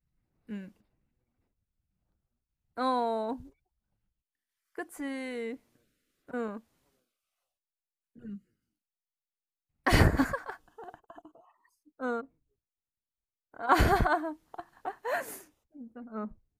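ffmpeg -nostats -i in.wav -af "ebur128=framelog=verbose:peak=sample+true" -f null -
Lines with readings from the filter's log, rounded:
Integrated loudness:
  I:         -30.9 LUFS
  Threshold: -43.3 LUFS
Loudness range:
  LRA:        13.2 LU
  Threshold: -54.9 LUFS
  LRA low:   -44.9 LUFS
  LRA high:  -31.7 LUFS
Sample peak:
  Peak:       -9.0 dBFS
True peak:
  Peak:       -9.0 dBFS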